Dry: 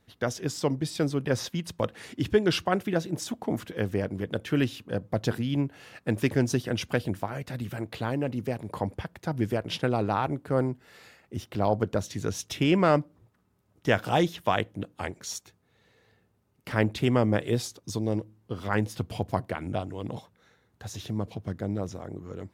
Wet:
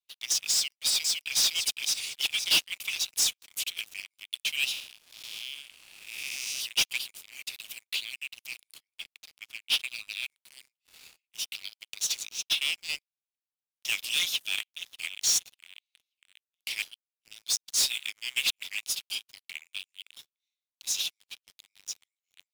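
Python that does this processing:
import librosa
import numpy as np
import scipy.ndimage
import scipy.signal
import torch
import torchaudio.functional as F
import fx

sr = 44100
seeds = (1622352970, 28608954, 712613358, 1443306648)

y = fx.echo_throw(x, sr, start_s=0.53, length_s=0.89, ms=510, feedback_pct=35, wet_db=-3.0)
y = fx.band_squash(y, sr, depth_pct=40, at=(2.22, 3.81))
y = fx.spec_blur(y, sr, span_ms=288.0, at=(4.71, 6.6), fade=0.02)
y = fx.lowpass(y, sr, hz=2800.0, slope=6, at=(8.77, 9.84))
y = fx.bandpass_q(y, sr, hz=fx.line((12.28, 1800.0), (12.88, 7100.0)), q=1.6, at=(12.28, 12.88), fade=0.02)
y = fx.echo_throw(y, sr, start_s=14.17, length_s=1.03, ms=590, feedback_pct=45, wet_db=-14.5)
y = fx.high_shelf(y, sr, hz=6800.0, db=-7.0, at=(19.15, 19.74))
y = fx.edit(y, sr, fx.reverse_span(start_s=16.82, length_s=1.81), tone=tone)
y = scipy.signal.sosfilt(scipy.signal.butter(12, 2300.0, 'highpass', fs=sr, output='sos'), y)
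y = fx.leveller(y, sr, passes=5)
y = fx.upward_expand(y, sr, threshold_db=-38.0, expansion=1.5)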